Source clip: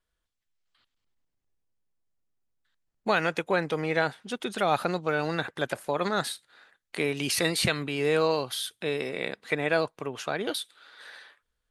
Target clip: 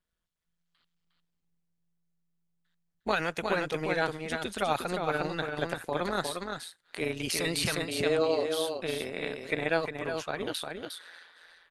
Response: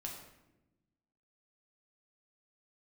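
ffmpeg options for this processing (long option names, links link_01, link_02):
-filter_complex "[0:a]asettb=1/sr,asplit=3[link_01][link_02][link_03];[link_01]atrim=end=7.844[link_04];[link_02]atrim=start=7.84:end=8.54,asetpts=PTS-STARTPTS,afade=type=in:duration=0.004:curve=qsin,afade=type=out:start_time=0.696:duration=0.004:curve=qsin,highpass=frequency=220:width=0.5412,highpass=frequency=220:width=1.3066,equalizer=frequency=570:width_type=q:width=4:gain=7,equalizer=frequency=1000:width_type=q:width=4:gain=-5,equalizer=frequency=1600:width_type=q:width=4:gain=-3,equalizer=frequency=2400:width_type=q:width=4:gain=-4,lowpass=frequency=9300:width=0.5412,lowpass=frequency=9300:width=1.3066[link_05];[link_03]atrim=start=8.536[link_06];[link_04][link_05]acrossfade=duration=0.004:curve1=hsin:curve2=qsin[link_07];[link_07][link_06]acrossfade=duration=0.004:curve1=qsin:curve2=hsin,aecho=1:1:357:0.562,tremolo=f=170:d=0.667,asettb=1/sr,asplit=3[link_08][link_09][link_10];[link_08]atrim=end=3.114[link_11];[link_09]atrim=start=3.11:end=4.93,asetpts=PTS-STARTPTS,afade=type=in:duration=0.004:curve=qsin,afade=type=out:start_time=1.816:duration=0.004:curve=qsin,highshelf=frequency=5600:gain=6[link_12];[link_10]atrim=start=4.926[link_13];[link_11][link_12]acrossfade=duration=0.004:curve1=hsin:curve2=qsin[link_14];[link_14][link_13]acrossfade=duration=0.004:curve1=qsin:curve2=hsin,volume=-1dB"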